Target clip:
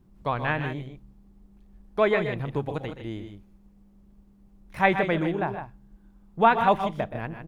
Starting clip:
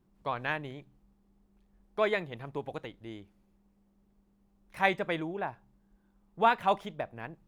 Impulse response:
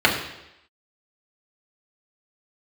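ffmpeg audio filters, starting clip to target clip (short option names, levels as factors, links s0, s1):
-filter_complex "[0:a]lowshelf=f=210:g=9.5,aecho=1:1:124|154:0.251|0.335,acrossover=split=3200[s0][s1];[s1]acompressor=threshold=0.00282:ratio=4:attack=1:release=60[s2];[s0][s2]amix=inputs=2:normalize=0,volume=1.78"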